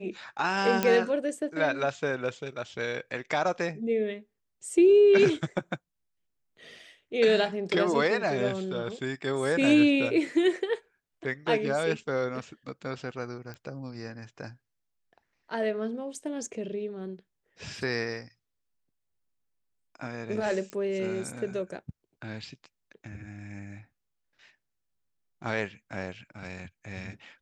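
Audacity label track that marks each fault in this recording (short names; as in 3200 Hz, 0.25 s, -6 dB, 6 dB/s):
0.830000	0.830000	pop -10 dBFS
13.540000	13.540000	pop -27 dBFS
20.700000	20.700000	pop -24 dBFS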